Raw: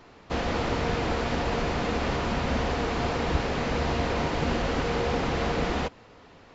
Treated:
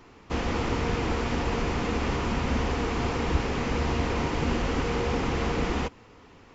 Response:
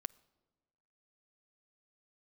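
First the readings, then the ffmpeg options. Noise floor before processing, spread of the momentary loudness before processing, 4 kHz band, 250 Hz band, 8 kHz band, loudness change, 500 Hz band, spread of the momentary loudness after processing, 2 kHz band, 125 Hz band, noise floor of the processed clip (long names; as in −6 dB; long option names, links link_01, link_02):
−52 dBFS, 1 LU, −1.5 dB, +1.0 dB, can't be measured, −0.5 dB, −1.5 dB, 1 LU, −1.0 dB, +1.0 dB, −52 dBFS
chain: -af "acontrast=45,equalizer=frequency=160:width_type=o:width=0.67:gain=-3,equalizer=frequency=630:width_type=o:width=0.67:gain=-8,equalizer=frequency=1600:width_type=o:width=0.67:gain=-4,equalizer=frequency=4000:width_type=o:width=0.67:gain=-6,volume=-3.5dB"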